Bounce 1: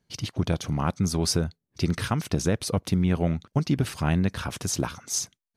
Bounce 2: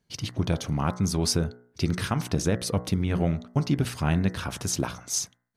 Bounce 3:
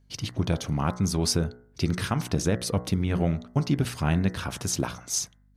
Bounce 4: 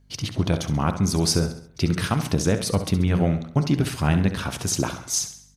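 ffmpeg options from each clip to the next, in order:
-af "bandreject=f=60.64:t=h:w=4,bandreject=f=121.28:t=h:w=4,bandreject=f=181.92:t=h:w=4,bandreject=f=242.56:t=h:w=4,bandreject=f=303.2:t=h:w=4,bandreject=f=363.84:t=h:w=4,bandreject=f=424.48:t=h:w=4,bandreject=f=485.12:t=h:w=4,bandreject=f=545.76:t=h:w=4,bandreject=f=606.4:t=h:w=4,bandreject=f=667.04:t=h:w=4,bandreject=f=727.68:t=h:w=4,bandreject=f=788.32:t=h:w=4,bandreject=f=848.96:t=h:w=4,bandreject=f=909.6:t=h:w=4,bandreject=f=970.24:t=h:w=4,bandreject=f=1030.88:t=h:w=4,bandreject=f=1091.52:t=h:w=4,bandreject=f=1152.16:t=h:w=4,bandreject=f=1212.8:t=h:w=4,bandreject=f=1273.44:t=h:w=4,bandreject=f=1334.08:t=h:w=4,bandreject=f=1394.72:t=h:w=4,bandreject=f=1455.36:t=h:w=4,bandreject=f=1516:t=h:w=4,bandreject=f=1576.64:t=h:w=4,bandreject=f=1637.28:t=h:w=4,bandreject=f=1697.92:t=h:w=4,bandreject=f=1758.56:t=h:w=4,bandreject=f=1819.2:t=h:w=4,bandreject=f=1879.84:t=h:w=4,bandreject=f=1940.48:t=h:w=4,bandreject=f=2001.12:t=h:w=4,bandreject=f=2061.76:t=h:w=4"
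-af "aeval=exprs='val(0)+0.00112*(sin(2*PI*50*n/s)+sin(2*PI*2*50*n/s)/2+sin(2*PI*3*50*n/s)/3+sin(2*PI*4*50*n/s)/4+sin(2*PI*5*50*n/s)/5)':c=same"
-af "aecho=1:1:67|134|201|268|335:0.266|0.122|0.0563|0.0259|0.0119,volume=1.5"

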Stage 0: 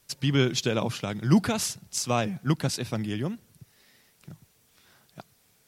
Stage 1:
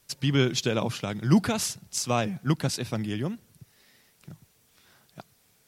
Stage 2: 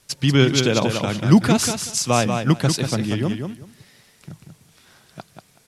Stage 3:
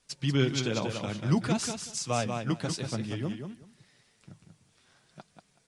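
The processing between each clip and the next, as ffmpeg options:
-af anull
-filter_complex "[0:a]lowpass=f=12000:w=0.5412,lowpass=f=12000:w=1.3066,asplit=2[s0][s1];[s1]aecho=0:1:188|376|564:0.501|0.0902|0.0162[s2];[s0][s2]amix=inputs=2:normalize=0,volume=2.24"
-af "flanger=delay=3.9:depth=7.1:regen=-39:speed=0.56:shape=triangular,volume=0.422" -ar 22050 -c:a aac -b:a 96k

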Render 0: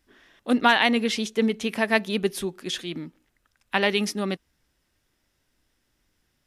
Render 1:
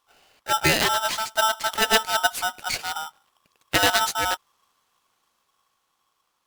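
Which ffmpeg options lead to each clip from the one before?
-af "dynaudnorm=f=310:g=9:m=3.76,aeval=exprs='val(0)*sgn(sin(2*PI*1100*n/s))':c=same,volume=0.794"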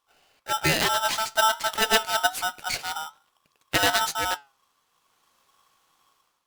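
-af "dynaudnorm=f=610:g=3:m=3.98,flanger=delay=6.2:depth=1.3:regen=86:speed=1.2:shape=sinusoidal"

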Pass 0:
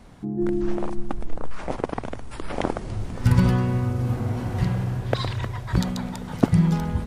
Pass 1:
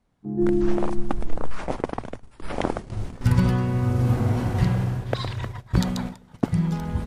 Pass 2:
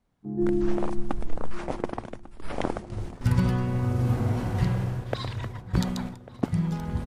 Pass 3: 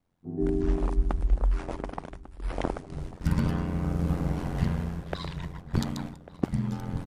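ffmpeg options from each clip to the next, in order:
-af "agate=range=0.141:threshold=0.0355:ratio=16:detection=peak,dynaudnorm=f=220:g=3:m=3.55,volume=0.501"
-filter_complex "[0:a]asplit=2[s0][s1];[s1]adelay=1146,lowpass=f=2100:p=1,volume=0.141,asplit=2[s2][s3];[s3]adelay=1146,lowpass=f=2100:p=1,volume=0.54,asplit=2[s4][s5];[s5]adelay=1146,lowpass=f=2100:p=1,volume=0.54,asplit=2[s6][s7];[s7]adelay=1146,lowpass=f=2100:p=1,volume=0.54,asplit=2[s8][s9];[s9]adelay=1146,lowpass=f=2100:p=1,volume=0.54[s10];[s0][s2][s4][s6][s8][s10]amix=inputs=6:normalize=0,volume=0.668"
-af "aeval=exprs='val(0)*sin(2*PI*44*n/s)':c=same"

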